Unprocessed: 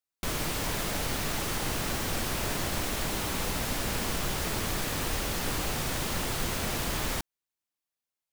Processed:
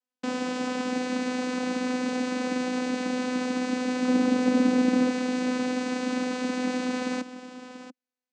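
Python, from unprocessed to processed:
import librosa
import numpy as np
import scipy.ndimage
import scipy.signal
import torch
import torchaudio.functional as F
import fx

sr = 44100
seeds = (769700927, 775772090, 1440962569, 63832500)

y = fx.low_shelf(x, sr, hz=430.0, db=10.0, at=(4.07, 5.09))
y = fx.vocoder(y, sr, bands=8, carrier='saw', carrier_hz=252.0)
y = y + 10.0 ** (-13.0 / 20.0) * np.pad(y, (int(687 * sr / 1000.0), 0))[:len(y)]
y = F.gain(torch.from_numpy(y), 5.5).numpy()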